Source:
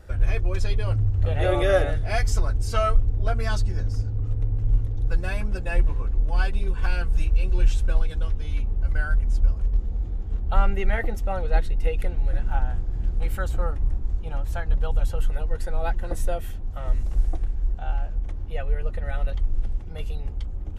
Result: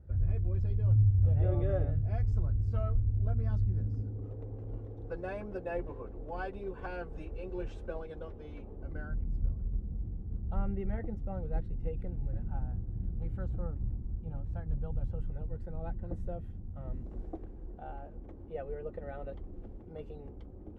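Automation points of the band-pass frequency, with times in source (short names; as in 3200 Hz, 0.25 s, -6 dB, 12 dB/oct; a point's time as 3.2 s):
band-pass, Q 1.2
3.68 s 120 Hz
4.34 s 460 Hz
8.72 s 460 Hz
9.26 s 150 Hz
16.71 s 150 Hz
17.21 s 350 Hz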